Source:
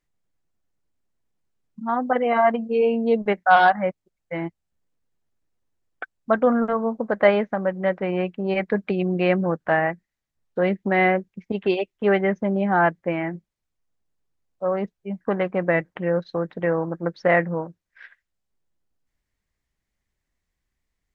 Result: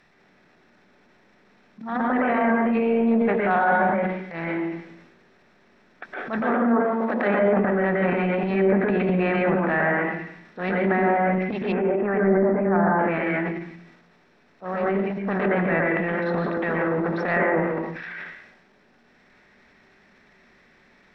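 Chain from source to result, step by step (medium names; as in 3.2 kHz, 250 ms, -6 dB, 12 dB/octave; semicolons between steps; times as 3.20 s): spectral levelling over time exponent 0.6; reverberation RT60 0.65 s, pre-delay 113 ms, DRR -0.5 dB; transient shaper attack -9 dB, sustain +7 dB; 11.72–12.99 s: low-pass 1.8 kHz 24 dB/octave; low-pass that closes with the level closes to 1.2 kHz, closed at -10.5 dBFS; 6.44–7.40 s: high-pass 170 Hz; trim -4.5 dB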